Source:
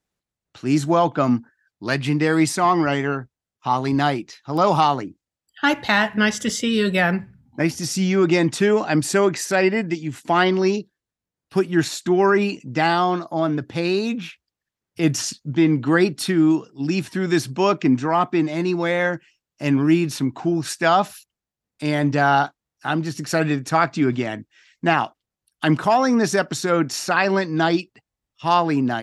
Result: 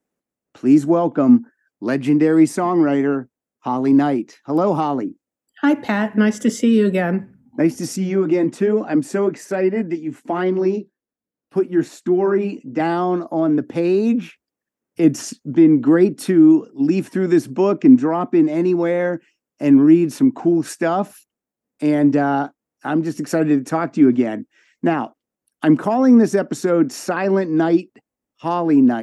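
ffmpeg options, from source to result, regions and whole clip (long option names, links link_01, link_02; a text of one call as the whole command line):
ffmpeg -i in.wav -filter_complex "[0:a]asettb=1/sr,asplit=3[link_01][link_02][link_03];[link_01]atrim=end=7.964[link_04];[link_02]atrim=start=7.96:end=12.8,asetpts=PTS-STARTPTS,afade=type=in:duration=0.004:curve=qsin,afade=type=out:start_time=4.836:duration=0.004:curve=qsin,highshelf=frequency=5800:gain=-6,flanger=delay=0.5:depth=8.6:regen=-53:speed=1.2:shape=sinusoidal[link_05];[link_03]atrim=start=12.796[link_06];[link_04][link_05]acrossfade=duration=0.004:curve1=hsin:curve2=qsin[link_07];[link_07][link_06]acrossfade=duration=0.004:curve1=qsin:curve2=hsin,equalizer=frequency=250:width_type=o:width=1:gain=12,equalizer=frequency=500:width_type=o:width=1:gain=6,equalizer=frequency=4000:width_type=o:width=1:gain=-9,acrossover=split=390[link_08][link_09];[link_09]acompressor=threshold=-23dB:ratio=2[link_10];[link_08][link_10]amix=inputs=2:normalize=0,lowshelf=frequency=180:gain=-11" out.wav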